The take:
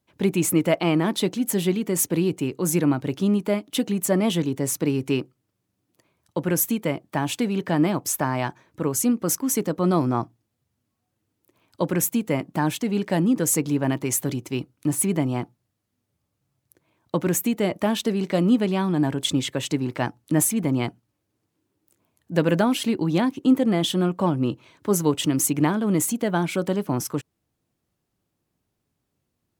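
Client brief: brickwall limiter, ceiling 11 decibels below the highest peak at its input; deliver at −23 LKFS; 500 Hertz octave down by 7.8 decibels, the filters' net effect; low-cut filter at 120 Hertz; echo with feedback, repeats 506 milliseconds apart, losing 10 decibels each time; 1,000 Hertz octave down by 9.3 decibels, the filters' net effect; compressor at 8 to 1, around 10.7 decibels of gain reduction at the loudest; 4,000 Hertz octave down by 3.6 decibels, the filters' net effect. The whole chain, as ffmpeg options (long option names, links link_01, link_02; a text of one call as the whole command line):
ffmpeg -i in.wav -af "highpass=120,equalizer=frequency=500:width_type=o:gain=-9,equalizer=frequency=1000:width_type=o:gain=-8.5,equalizer=frequency=4000:width_type=o:gain=-4,acompressor=threshold=-27dB:ratio=8,alimiter=level_in=3.5dB:limit=-24dB:level=0:latency=1,volume=-3.5dB,aecho=1:1:506|1012|1518|2024:0.316|0.101|0.0324|0.0104,volume=13dB" out.wav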